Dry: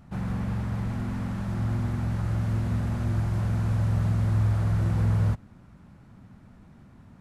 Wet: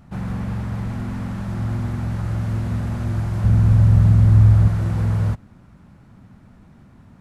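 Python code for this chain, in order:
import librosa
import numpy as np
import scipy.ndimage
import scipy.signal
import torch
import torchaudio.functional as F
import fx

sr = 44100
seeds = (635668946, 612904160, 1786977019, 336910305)

y = fx.low_shelf(x, sr, hz=200.0, db=10.5, at=(3.44, 4.68))
y = F.gain(torch.from_numpy(y), 3.5).numpy()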